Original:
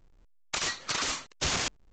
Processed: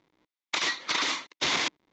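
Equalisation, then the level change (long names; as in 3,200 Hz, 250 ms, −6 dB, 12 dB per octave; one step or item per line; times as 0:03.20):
loudspeaker in its box 210–6,300 Hz, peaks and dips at 310 Hz +7 dB, 990 Hz +6 dB, 2,100 Hz +8 dB, 3,600 Hz +7 dB
0.0 dB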